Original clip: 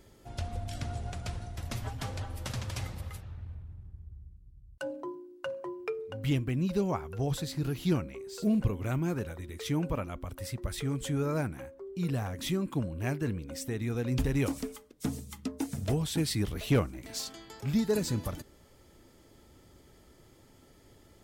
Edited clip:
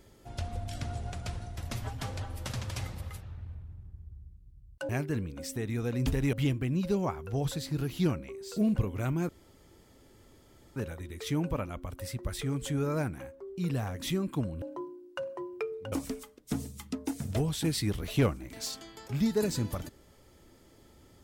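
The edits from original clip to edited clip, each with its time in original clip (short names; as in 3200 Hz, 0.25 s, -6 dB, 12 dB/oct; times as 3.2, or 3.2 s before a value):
4.89–6.19 swap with 13.01–14.45
9.15 insert room tone 1.47 s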